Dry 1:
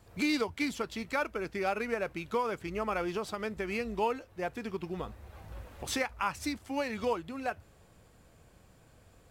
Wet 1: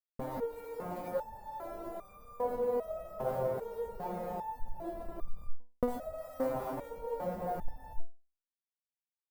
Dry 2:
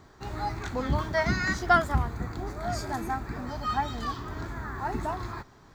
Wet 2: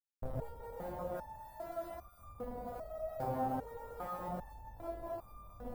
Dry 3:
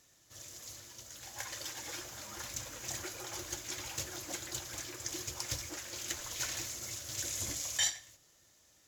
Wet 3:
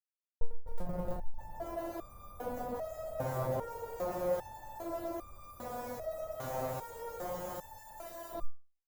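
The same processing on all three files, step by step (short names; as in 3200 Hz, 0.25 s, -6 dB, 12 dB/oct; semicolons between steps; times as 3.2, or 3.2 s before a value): high shelf 3700 Hz +9 dB; thin delay 0.102 s, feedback 32%, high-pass 2100 Hz, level -13 dB; non-linear reverb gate 0.47 s rising, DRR -4 dB; Schmitt trigger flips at -29 dBFS; negative-ratio compressor -36 dBFS, ratio -0.5; expander -43 dBFS; EQ curve 100 Hz 0 dB, 380 Hz -5 dB, 560 Hz +9 dB, 2700 Hz -21 dB, 6600 Hz -21 dB, 14000 Hz -7 dB; stepped resonator 2.5 Hz 130–1200 Hz; gain +16.5 dB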